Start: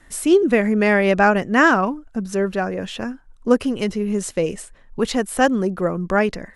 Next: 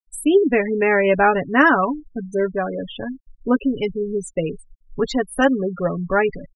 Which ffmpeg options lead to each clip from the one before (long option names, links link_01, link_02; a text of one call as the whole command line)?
ffmpeg -i in.wav -af "aecho=1:1:7.1:0.56,afftfilt=real='re*gte(hypot(re,im),0.0891)':imag='im*gte(hypot(re,im),0.0891)':win_size=1024:overlap=0.75,volume=-1dB" out.wav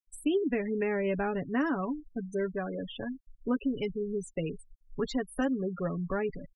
ffmpeg -i in.wav -filter_complex "[0:a]acrossover=split=390|1100|5900[link_01][link_02][link_03][link_04];[link_01]acompressor=threshold=-19dB:ratio=4[link_05];[link_02]acompressor=threshold=-32dB:ratio=4[link_06];[link_03]acompressor=threshold=-33dB:ratio=4[link_07];[link_04]acompressor=threshold=-43dB:ratio=4[link_08];[link_05][link_06][link_07][link_08]amix=inputs=4:normalize=0,volume=-7.5dB" out.wav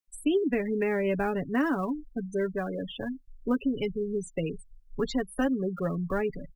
ffmpeg -i in.wav -filter_complex "[0:a]acrossover=split=100|900|2100[link_01][link_02][link_03][link_04];[link_01]asplit=2[link_05][link_06];[link_06]adelay=47,volume=-3dB[link_07];[link_05][link_07]amix=inputs=2:normalize=0[link_08];[link_03]acrusher=bits=5:mode=log:mix=0:aa=0.000001[link_09];[link_08][link_02][link_09][link_04]amix=inputs=4:normalize=0,volume=2.5dB" out.wav